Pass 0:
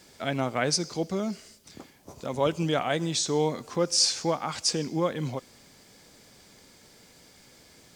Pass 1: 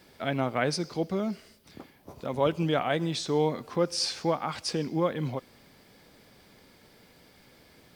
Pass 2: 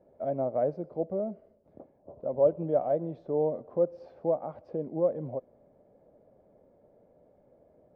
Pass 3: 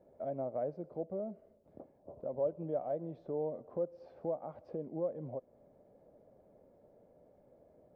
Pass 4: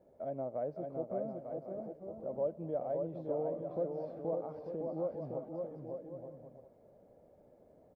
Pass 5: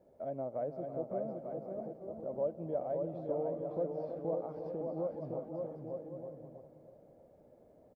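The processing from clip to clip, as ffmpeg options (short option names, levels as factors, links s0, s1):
-af "equalizer=f=7000:t=o:w=0.91:g=-13"
-af "lowpass=f=600:t=q:w=4.9,volume=0.398"
-af "acompressor=threshold=0.00708:ratio=1.5,volume=0.794"
-af "aecho=1:1:560|896|1098|1219|1291:0.631|0.398|0.251|0.158|0.1,volume=0.891"
-filter_complex "[0:a]asplit=2[s0][s1];[s1]adelay=323,lowpass=f=1500:p=1,volume=0.282,asplit=2[s2][s3];[s3]adelay=323,lowpass=f=1500:p=1,volume=0.47,asplit=2[s4][s5];[s5]adelay=323,lowpass=f=1500:p=1,volume=0.47,asplit=2[s6][s7];[s7]adelay=323,lowpass=f=1500:p=1,volume=0.47,asplit=2[s8][s9];[s9]adelay=323,lowpass=f=1500:p=1,volume=0.47[s10];[s0][s2][s4][s6][s8][s10]amix=inputs=6:normalize=0"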